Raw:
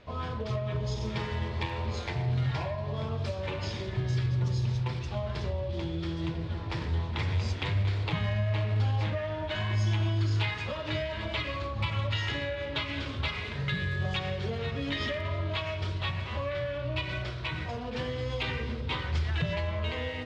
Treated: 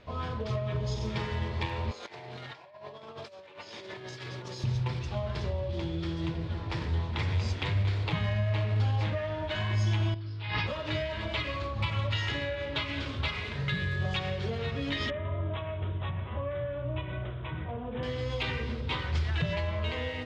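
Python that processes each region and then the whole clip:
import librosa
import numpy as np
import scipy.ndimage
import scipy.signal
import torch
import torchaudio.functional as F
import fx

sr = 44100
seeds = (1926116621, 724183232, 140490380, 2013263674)

y = fx.chain(x, sr, fx.highpass(hz=350.0, slope=12),
    fx.over_compress(threshold_db=-43.0, ratio=-0.5), at=(1.91, 4.64))
y = fx.chain(y, sr, fx.cheby1_lowpass(hz=5300.0, order=5),
    fx.over_compress(threshold_db=-37.0, ratio=-1.0),
    fx.doubler(ms=18.0, db=-5), at=(10.14, 10.67))
y = fx.chain(y, sr, fx.highpass(hz=42.0, slope=12),
    fx.peak_eq(hz=2800.0, db=-11.5, octaves=1.7),
    fx.resample_bad(factor=6, down='none', up='filtered'), at=(15.1, 18.03))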